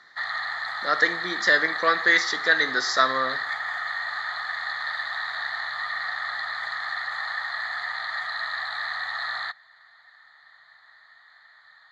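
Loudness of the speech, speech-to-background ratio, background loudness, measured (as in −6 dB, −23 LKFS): −22.0 LKFS, 7.0 dB, −29.0 LKFS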